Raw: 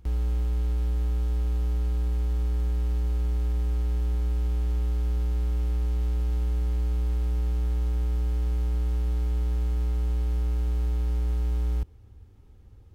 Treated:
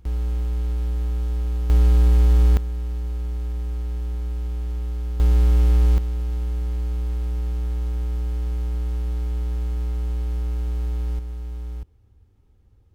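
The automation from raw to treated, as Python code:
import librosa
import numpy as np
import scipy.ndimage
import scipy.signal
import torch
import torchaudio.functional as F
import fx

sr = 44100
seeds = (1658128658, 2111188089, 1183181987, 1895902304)

y = fx.gain(x, sr, db=fx.steps((0.0, 2.0), (1.7, 11.0), (2.57, -1.0), (5.2, 10.0), (5.98, 1.0), (11.19, -5.5)))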